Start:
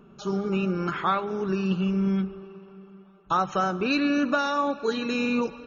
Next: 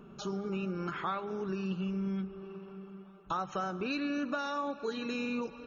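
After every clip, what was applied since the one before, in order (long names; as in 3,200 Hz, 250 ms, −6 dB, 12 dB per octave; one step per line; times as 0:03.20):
downward compressor 2 to 1, threshold −40 dBFS, peak gain reduction 11 dB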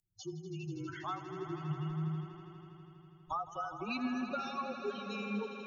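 spectral dynamics exaggerated over time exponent 3
echo that builds up and dies away 81 ms, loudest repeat 5, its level −13.5 dB
frequency shifter −37 Hz
level +1 dB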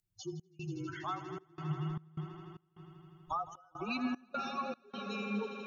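gate pattern "xx.xxxx.xx." 76 BPM −24 dB
level +1 dB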